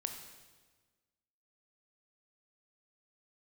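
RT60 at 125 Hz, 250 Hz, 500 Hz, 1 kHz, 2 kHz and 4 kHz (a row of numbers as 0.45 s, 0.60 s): 1.6 s, 1.6 s, 1.5 s, 1.3 s, 1.3 s, 1.2 s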